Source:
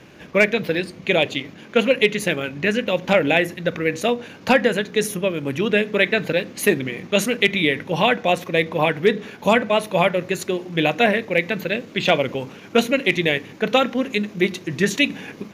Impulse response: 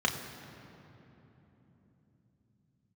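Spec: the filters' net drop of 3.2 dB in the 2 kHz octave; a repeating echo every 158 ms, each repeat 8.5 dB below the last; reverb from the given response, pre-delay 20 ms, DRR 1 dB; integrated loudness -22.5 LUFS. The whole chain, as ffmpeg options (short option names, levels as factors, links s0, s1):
-filter_complex "[0:a]equalizer=f=2000:t=o:g=-4,aecho=1:1:158|316|474|632:0.376|0.143|0.0543|0.0206,asplit=2[s0][s1];[1:a]atrim=start_sample=2205,adelay=20[s2];[s1][s2]afir=irnorm=-1:irlink=0,volume=0.282[s3];[s0][s3]amix=inputs=2:normalize=0,volume=0.596"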